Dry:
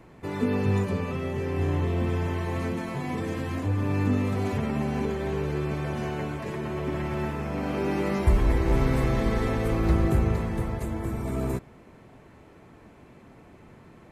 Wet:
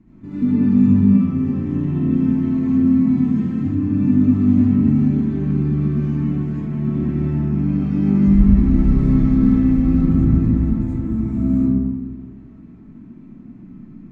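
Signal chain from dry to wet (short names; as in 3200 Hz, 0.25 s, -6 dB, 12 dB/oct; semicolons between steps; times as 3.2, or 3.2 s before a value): EQ curve 120 Hz 0 dB, 250 Hz +11 dB, 490 Hz -20 dB, 1100 Hz -14 dB, 2200 Hz -14 dB, 3100 Hz -16 dB, 6900 Hz -15 dB, 10000 Hz -28 dB; digital reverb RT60 1.7 s, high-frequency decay 0.4×, pre-delay 35 ms, DRR -9.5 dB; gain -2.5 dB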